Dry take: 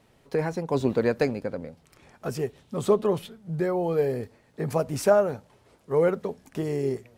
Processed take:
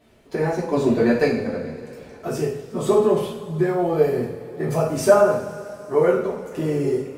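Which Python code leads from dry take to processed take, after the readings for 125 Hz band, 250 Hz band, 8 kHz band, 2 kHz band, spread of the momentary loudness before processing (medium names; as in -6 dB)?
+4.0 dB, +6.5 dB, +5.5 dB, +6.5 dB, 12 LU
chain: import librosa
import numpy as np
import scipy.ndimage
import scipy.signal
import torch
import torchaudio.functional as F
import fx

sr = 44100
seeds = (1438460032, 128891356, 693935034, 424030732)

y = fx.spec_quant(x, sr, step_db=15)
y = fx.rev_double_slope(y, sr, seeds[0], early_s=0.53, late_s=3.6, knee_db=-18, drr_db=-6.0)
y = F.gain(torch.from_numpy(y), -1.0).numpy()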